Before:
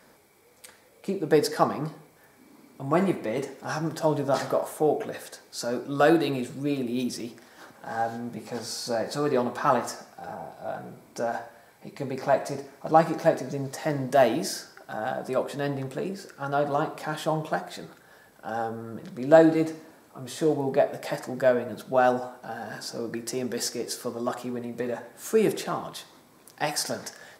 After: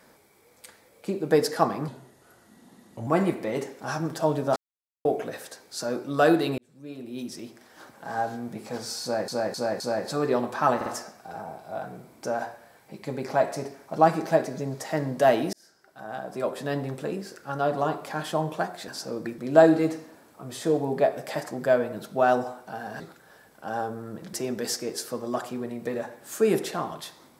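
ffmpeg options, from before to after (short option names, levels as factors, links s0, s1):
-filter_complex "[0:a]asplit=16[s0][s1][s2][s3][s4][s5][s6][s7][s8][s9][s10][s11][s12][s13][s14][s15];[s0]atrim=end=1.884[s16];[s1]atrim=start=1.88:end=2.88,asetpts=PTS-STARTPTS,asetrate=37044,aresample=44100[s17];[s2]atrim=start=2.876:end=4.37,asetpts=PTS-STARTPTS,afade=t=out:st=1.49:d=0.004:c=hsin[s18];[s3]atrim=start=4.37:end=4.86,asetpts=PTS-STARTPTS,volume=0[s19];[s4]atrim=start=4.86:end=6.39,asetpts=PTS-STARTPTS,afade=t=in:d=0.004:c=hsin,afade=t=out:st=1.526:d=0.004:c=hsin[s20];[s5]atrim=start=6.39:end=9.092,asetpts=PTS-STARTPTS,afade=t=in:d=1.34[s21];[s6]atrim=start=8.828:end=9.092[s22];[s7]atrim=start=8.828:end=9.092[s23];[s8]atrim=start=8.828:end=9.842[s24];[s9]atrim=start=9.788:end=9.842[s25];[s10]atrim=start=9.788:end=14.46,asetpts=PTS-STARTPTS,afade=t=out:st=4.668:d=0.004:c=hsin[s26];[s11]atrim=start=14.46:end=17.812,asetpts=PTS-STARTPTS,afade=t=in:d=1.14[s27];[s12]atrim=start=22.758:end=23.262[s28];[s13]atrim=start=19.138:end=22.762[s29];[s14]atrim=start=17.808:end=19.142[s30];[s15]atrim=start=23.258[s31];[s16][s17]acrossfade=d=0.004:c1=hsin:c2=hsin[s32];[s18][s19][s20][s21]concat=n=4:v=0:a=1[s33];[s32][s33]acrossfade=d=0.004:c1=hsin:c2=hsin[s34];[s34][s22]acrossfade=d=0.004:c1=hsin:c2=hsin[s35];[s35][s23]acrossfade=d=0.004:c1=hsin:c2=hsin[s36];[s36][s24]acrossfade=d=0.004:c1=hsin:c2=hsin[s37];[s37][s25]acrossfade=d=0.004:c1=hsin:c2=hsin[s38];[s26][s27]concat=n=2:v=0:a=1[s39];[s38][s39]acrossfade=d=0.004:c1=hsin:c2=hsin[s40];[s40][s28]acrossfade=d=0.004:c1=hsin:c2=hsin[s41];[s41][s29]acrossfade=d=0.004:c1=hsin:c2=hsin[s42];[s42][s30]acrossfade=d=0.004:c1=hsin:c2=hsin[s43];[s43][s31]acrossfade=d=0.004:c1=hsin:c2=hsin"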